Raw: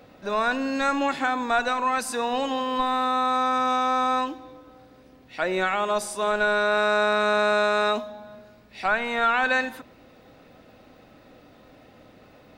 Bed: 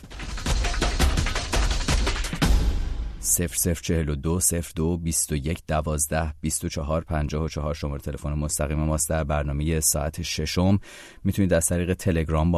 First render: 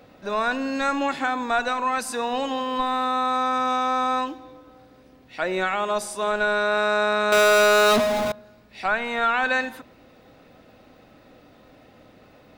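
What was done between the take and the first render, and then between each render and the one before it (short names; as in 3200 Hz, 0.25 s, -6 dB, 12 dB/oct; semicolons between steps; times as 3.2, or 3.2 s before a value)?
7.32–8.32 power-law curve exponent 0.35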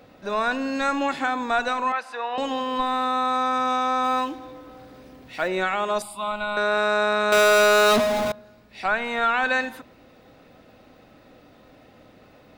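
1.92–2.38 three-band isolator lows -22 dB, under 490 Hz, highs -24 dB, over 3500 Hz; 4.04–5.48 G.711 law mismatch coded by mu; 6.02–6.57 fixed phaser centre 1700 Hz, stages 6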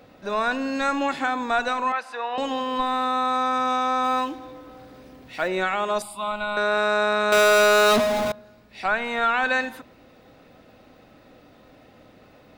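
nothing audible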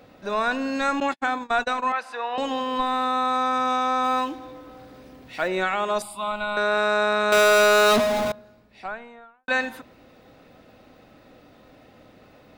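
1–1.86 gate -28 dBFS, range -59 dB; 8.18–9.48 studio fade out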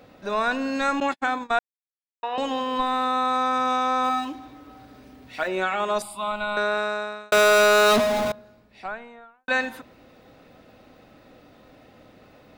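1.59–2.23 mute; 4.09–5.8 notch comb 170 Hz; 6.55–7.32 fade out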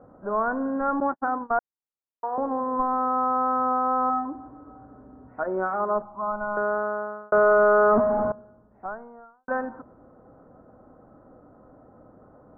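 steep low-pass 1400 Hz 48 dB/oct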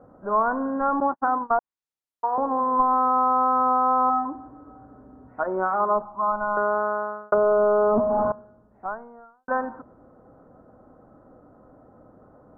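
treble ducked by the level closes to 650 Hz, closed at -18 dBFS; dynamic EQ 1000 Hz, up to +7 dB, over -41 dBFS, Q 1.9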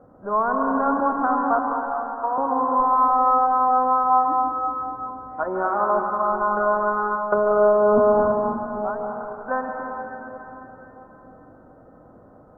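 plate-style reverb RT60 3.9 s, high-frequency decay 0.9×, pre-delay 0.12 s, DRR 0.5 dB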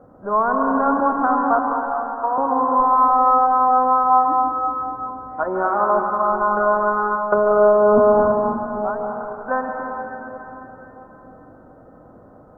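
gain +3 dB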